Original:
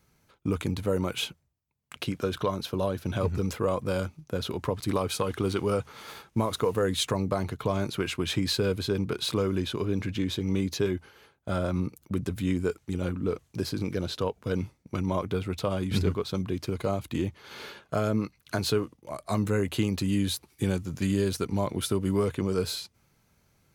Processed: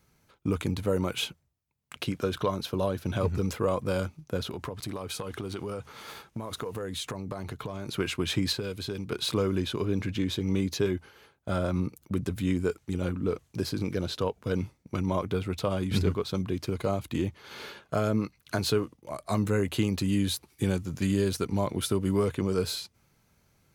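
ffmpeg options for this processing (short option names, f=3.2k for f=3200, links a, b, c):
-filter_complex "[0:a]asettb=1/sr,asplit=3[a][b][c];[a]atrim=end=4.414[d];[b]atrim=start=4.41:end=7.88,asetpts=PTS-STARTPTS,afade=t=in:d=0.004:c=qsin,afade=t=out:st=3.466:d=0.004:c=qsin,acompressor=threshold=-31dB:ratio=6:attack=3.2:release=140:knee=1:detection=peak[e];[c]atrim=start=7.876[f];[d][e]acrossfade=d=0.004:c1=hsin:c2=qsin[g];[g][f]acrossfade=d=0.004:c1=qsin:c2=hsin,asettb=1/sr,asplit=3[h][i][j];[h]atrim=end=8.524[k];[i]atrim=start=8.52:end=9.12,asetpts=PTS-STARTPTS,afade=t=in:d=0.004:c=qsin,afade=t=out:st=0.596:d=0.004:c=qsin,acrossover=split=2200|5700[l][m][n];[l]acompressor=threshold=-32dB:ratio=4[o];[m]acompressor=threshold=-38dB:ratio=4[p];[n]acompressor=threshold=-47dB:ratio=4[q];[o][p][q]amix=inputs=3:normalize=0[r];[j]atrim=start=9.116[s];[k][r]acrossfade=d=0.004:c1=hsin:c2=qsin[t];[t][s]acrossfade=d=0.004:c1=qsin:c2=hsin"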